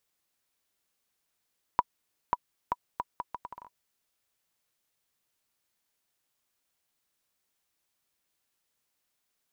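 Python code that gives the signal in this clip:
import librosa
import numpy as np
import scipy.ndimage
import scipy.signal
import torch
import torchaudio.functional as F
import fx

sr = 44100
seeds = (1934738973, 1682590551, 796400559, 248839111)

y = fx.bouncing_ball(sr, first_gap_s=0.54, ratio=0.72, hz=978.0, decay_ms=37.0, level_db=-10.0)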